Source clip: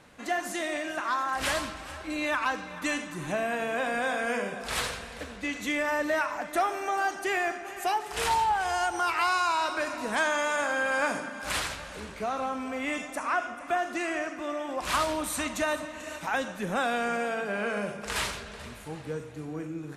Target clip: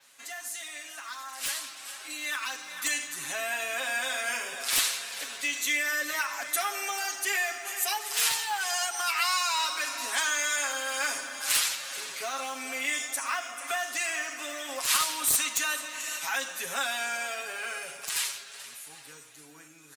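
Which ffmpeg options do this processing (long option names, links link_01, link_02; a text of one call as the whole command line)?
ffmpeg -i in.wav -filter_complex "[0:a]acrossover=split=480|950[link_01][link_02][link_03];[link_02]aeval=exprs='clip(val(0),-1,0.0126)':channel_layout=same[link_04];[link_01][link_04][link_03]amix=inputs=3:normalize=0,aderivative,asplit=2[link_05][link_06];[link_06]acompressor=threshold=-52dB:ratio=20,volume=3dB[link_07];[link_05][link_07]amix=inputs=2:normalize=0,aeval=exprs='(mod(12.6*val(0)+1,2)-1)/12.6':channel_layout=same,dynaudnorm=framelen=230:gausssize=21:maxgain=10dB,adynamicequalizer=threshold=0.00562:dfrequency=9500:dqfactor=1.7:tfrequency=9500:tqfactor=1.7:attack=5:release=100:ratio=0.375:range=2.5:mode=cutabove:tftype=bell,acrusher=bits=6:mode=log:mix=0:aa=0.000001,aecho=1:1:7.3:0.95,volume=-2dB" out.wav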